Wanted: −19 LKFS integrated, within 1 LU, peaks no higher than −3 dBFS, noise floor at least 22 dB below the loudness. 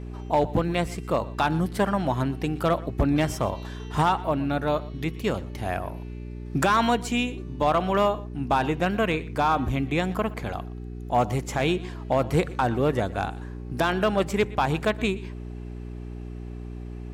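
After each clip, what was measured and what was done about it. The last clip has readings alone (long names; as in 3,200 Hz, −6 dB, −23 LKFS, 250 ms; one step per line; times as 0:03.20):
share of clipped samples 0.2%; peaks flattened at −13.5 dBFS; mains hum 60 Hz; hum harmonics up to 420 Hz; level of the hum −33 dBFS; integrated loudness −25.5 LKFS; sample peak −13.5 dBFS; target loudness −19.0 LKFS
→ clipped peaks rebuilt −13.5 dBFS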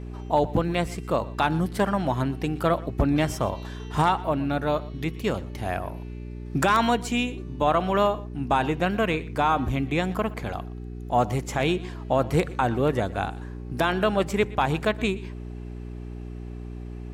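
share of clipped samples 0.0%; mains hum 60 Hz; hum harmonics up to 420 Hz; level of the hum −33 dBFS
→ hum removal 60 Hz, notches 7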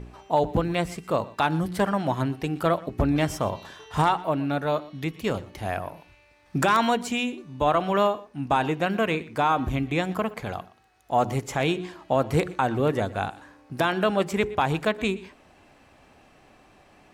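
mains hum none found; integrated loudness −26.0 LKFS; sample peak −8.0 dBFS; target loudness −19.0 LKFS
→ level +7 dB
brickwall limiter −3 dBFS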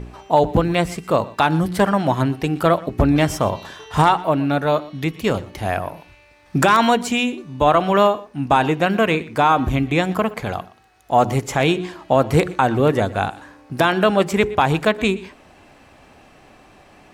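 integrated loudness −19.0 LKFS; sample peak −3.0 dBFS; background noise floor −50 dBFS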